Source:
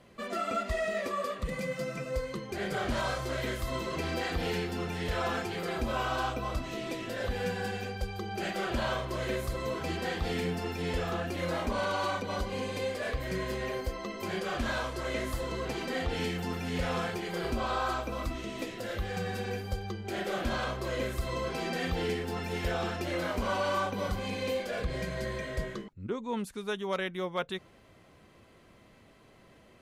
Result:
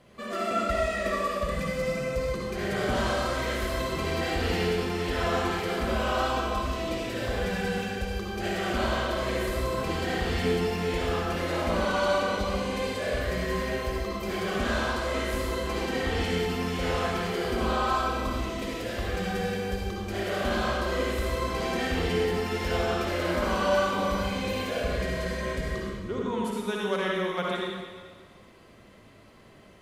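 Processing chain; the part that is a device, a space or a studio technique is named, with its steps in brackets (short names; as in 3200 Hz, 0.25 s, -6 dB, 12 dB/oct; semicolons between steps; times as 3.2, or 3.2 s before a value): stairwell (reverb RT60 1.6 s, pre-delay 51 ms, DRR -3.5 dB)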